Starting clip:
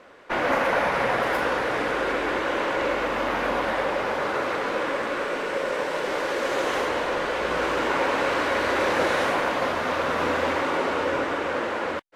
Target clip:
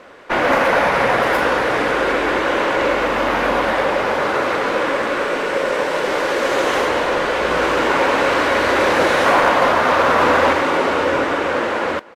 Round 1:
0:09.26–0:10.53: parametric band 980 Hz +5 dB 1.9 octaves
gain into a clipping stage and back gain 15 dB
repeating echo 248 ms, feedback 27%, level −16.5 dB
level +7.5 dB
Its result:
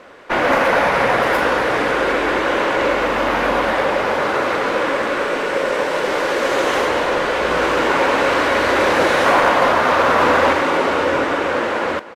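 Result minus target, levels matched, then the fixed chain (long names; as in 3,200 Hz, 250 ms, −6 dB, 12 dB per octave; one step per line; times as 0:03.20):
echo-to-direct +6 dB
0:09.26–0:10.53: parametric band 980 Hz +5 dB 1.9 octaves
gain into a clipping stage and back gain 15 dB
repeating echo 248 ms, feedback 27%, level −22.5 dB
level +7.5 dB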